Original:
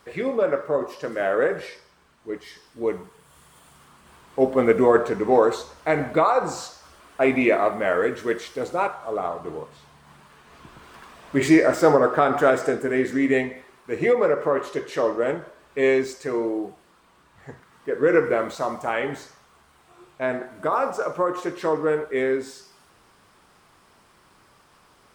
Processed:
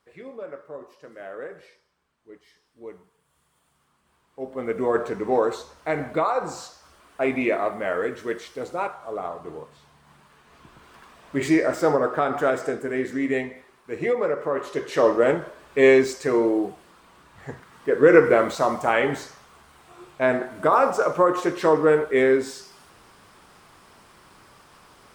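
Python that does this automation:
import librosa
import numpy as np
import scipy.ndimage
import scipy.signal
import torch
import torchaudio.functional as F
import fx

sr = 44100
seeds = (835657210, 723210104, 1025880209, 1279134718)

y = fx.gain(x, sr, db=fx.line((4.39, -15.0), (5.02, -4.0), (14.49, -4.0), (15.07, 4.5)))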